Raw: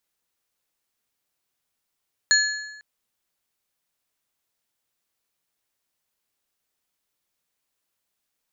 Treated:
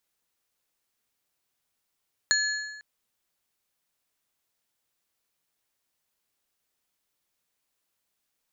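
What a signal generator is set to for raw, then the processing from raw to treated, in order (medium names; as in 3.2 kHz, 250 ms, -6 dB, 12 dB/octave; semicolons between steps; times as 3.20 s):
metal hit plate, length 0.50 s, lowest mode 1.71 kHz, modes 3, decay 1.08 s, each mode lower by 1 dB, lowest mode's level -16 dB
compression, threshold -21 dBFS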